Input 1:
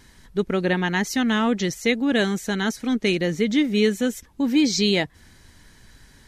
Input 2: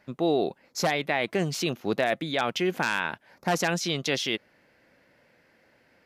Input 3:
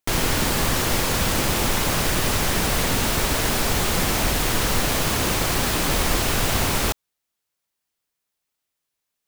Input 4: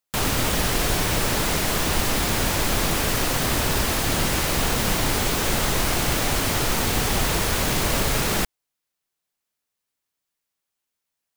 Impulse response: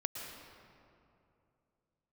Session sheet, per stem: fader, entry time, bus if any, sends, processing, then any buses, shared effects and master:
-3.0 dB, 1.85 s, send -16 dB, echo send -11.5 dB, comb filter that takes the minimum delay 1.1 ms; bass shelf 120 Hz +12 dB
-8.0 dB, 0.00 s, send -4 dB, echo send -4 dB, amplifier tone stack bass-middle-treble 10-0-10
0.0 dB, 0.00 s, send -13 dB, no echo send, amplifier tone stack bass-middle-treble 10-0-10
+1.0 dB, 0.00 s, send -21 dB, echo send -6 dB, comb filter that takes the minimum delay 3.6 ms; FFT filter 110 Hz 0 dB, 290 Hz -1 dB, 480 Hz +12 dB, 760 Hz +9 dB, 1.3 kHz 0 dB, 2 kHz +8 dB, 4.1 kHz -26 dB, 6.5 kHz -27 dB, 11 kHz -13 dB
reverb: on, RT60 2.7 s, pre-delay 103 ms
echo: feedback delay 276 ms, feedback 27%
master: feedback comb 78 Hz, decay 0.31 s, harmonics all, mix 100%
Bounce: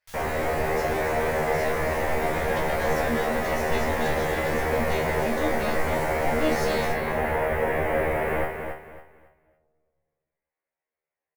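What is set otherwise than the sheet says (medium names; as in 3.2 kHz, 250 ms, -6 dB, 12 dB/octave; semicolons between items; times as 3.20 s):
stem 3 0.0 dB -> -11.5 dB; stem 4: missing comb filter that takes the minimum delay 3.6 ms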